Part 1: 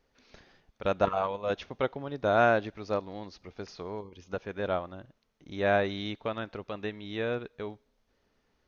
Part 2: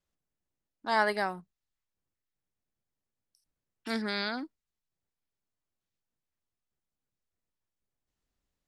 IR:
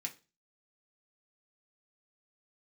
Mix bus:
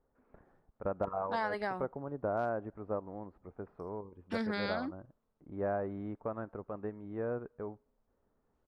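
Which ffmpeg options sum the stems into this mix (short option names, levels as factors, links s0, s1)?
-filter_complex "[0:a]lowpass=f=1300:w=0.5412,lowpass=f=1300:w=1.3066,asoftclip=type=hard:threshold=0.211,volume=0.668[s0];[1:a]aemphasis=mode=reproduction:type=75kf,adelay=450,volume=1.06[s1];[s0][s1]amix=inputs=2:normalize=0,acompressor=threshold=0.0316:ratio=6"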